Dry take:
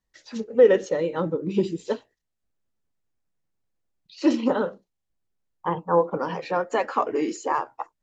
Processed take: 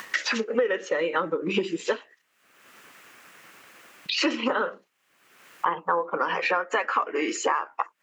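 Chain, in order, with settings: upward compressor, threshold -28 dBFS; HPF 330 Hz 12 dB/oct; band shelf 1800 Hz +10 dB; compressor 10:1, threshold -30 dBFS, peak gain reduction 19 dB; gain +8.5 dB

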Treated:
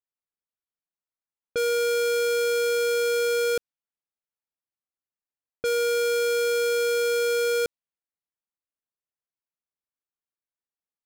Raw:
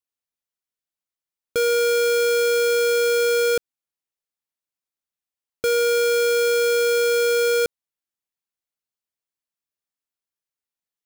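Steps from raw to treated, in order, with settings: low-pass opened by the level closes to 1800 Hz, open at -19 dBFS; gain -4.5 dB

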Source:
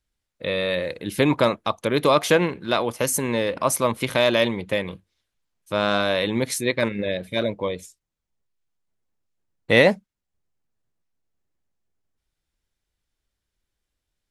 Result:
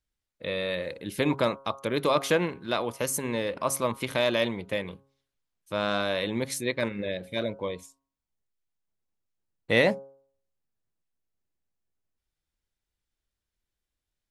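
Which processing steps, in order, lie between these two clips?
de-hum 136.3 Hz, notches 11; gain -6 dB

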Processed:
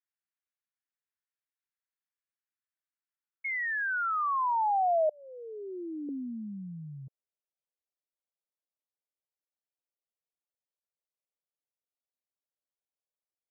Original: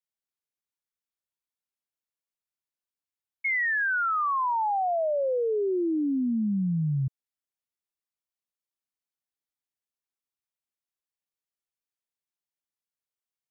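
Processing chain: 5.09–6.09 Chebyshev band-stop 260–2000 Hz, order 2; band-pass sweep 1700 Hz -> 550 Hz, 2.97–5.11; gain +2 dB

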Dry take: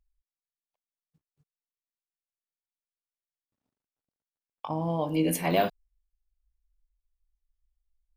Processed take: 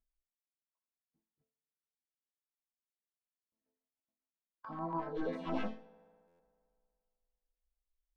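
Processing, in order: HPF 58 Hz 6 dB/oct; tone controls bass +2 dB, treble +6 dB; notches 60/120/180/240/300/360/420/480/540/600 Hz; wavefolder -21 dBFS; resonator bank A3 minor, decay 0.4 s; formant shift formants +6 st; LFO notch saw down 7.1 Hz 480–4400 Hz; tape spacing loss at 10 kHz 44 dB; reverb RT60 2.3 s, pre-delay 3 ms, DRR 19.5 dB; stuck buffer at 6.27, samples 512, times 10; gain +14 dB

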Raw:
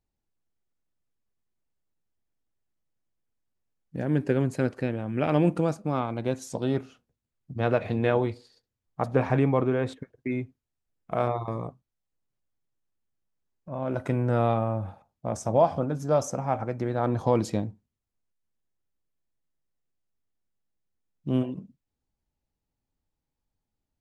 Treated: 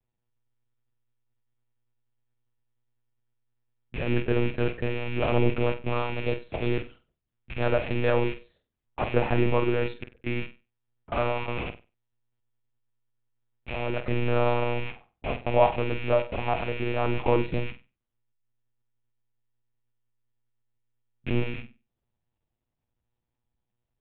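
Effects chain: rattling part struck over -40 dBFS, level -24 dBFS; monotone LPC vocoder at 8 kHz 120 Hz; flutter echo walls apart 8.2 m, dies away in 0.28 s

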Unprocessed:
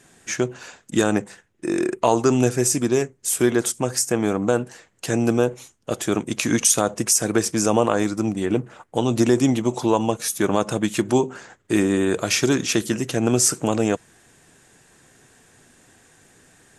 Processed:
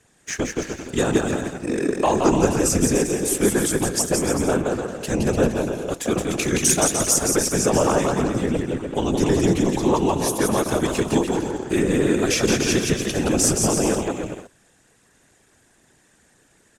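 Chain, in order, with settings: bouncing-ball echo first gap 0.17 s, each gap 0.75×, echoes 5; whisperiser; sample leveller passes 1; gain -5 dB

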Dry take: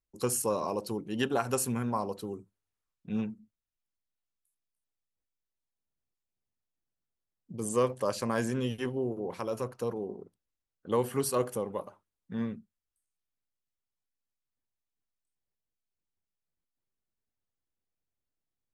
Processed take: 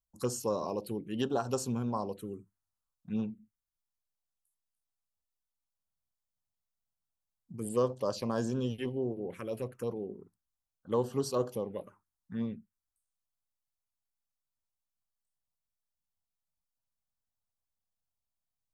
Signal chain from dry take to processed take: envelope phaser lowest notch 370 Hz, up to 2200 Hz, full sweep at -26.5 dBFS; gain -1 dB

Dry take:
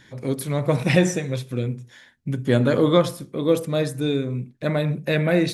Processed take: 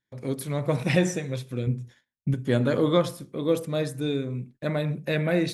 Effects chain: gate -44 dBFS, range -30 dB; 1.67–2.34 low shelf 280 Hz +8.5 dB; gain -4.5 dB

